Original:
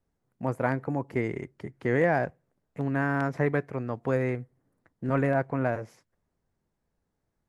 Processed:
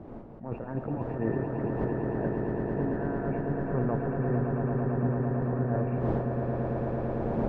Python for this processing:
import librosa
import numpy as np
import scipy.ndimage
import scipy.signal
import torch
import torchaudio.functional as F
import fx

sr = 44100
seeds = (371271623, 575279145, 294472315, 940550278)

y = fx.freq_compress(x, sr, knee_hz=1700.0, ratio=4.0)
y = fx.dmg_wind(y, sr, seeds[0], corner_hz=470.0, level_db=-44.0)
y = fx.peak_eq(y, sr, hz=780.0, db=2.5, octaves=1.4)
y = fx.over_compress(y, sr, threshold_db=-30.0, ratio=-0.5)
y = fx.tilt_shelf(y, sr, db=7.0, hz=1400.0)
y = fx.comb_fb(y, sr, f0_hz=230.0, decay_s=0.94, harmonics='all', damping=0.0, mix_pct=60)
y = fx.echo_swell(y, sr, ms=112, loudest=8, wet_db=-6.5)
y = fx.attack_slew(y, sr, db_per_s=150.0)